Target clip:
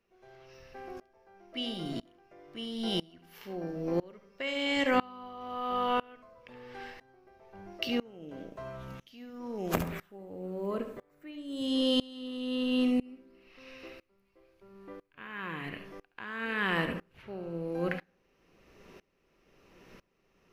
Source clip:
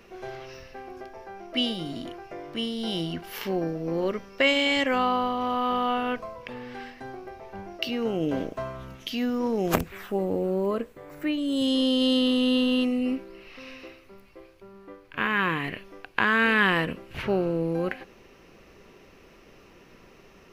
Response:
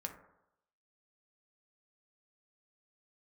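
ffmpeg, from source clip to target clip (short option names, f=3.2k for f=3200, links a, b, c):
-filter_complex "[0:a]asplit=2[a][b];[1:a]atrim=start_sample=2205,adelay=71[c];[b][c]afir=irnorm=-1:irlink=0,volume=-9dB[d];[a][d]amix=inputs=2:normalize=0,aeval=exprs='val(0)*pow(10,-26*if(lt(mod(-1*n/s,1),2*abs(-1)/1000),1-mod(-1*n/s,1)/(2*abs(-1)/1000),(mod(-1*n/s,1)-2*abs(-1)/1000)/(1-2*abs(-1)/1000))/20)':c=same"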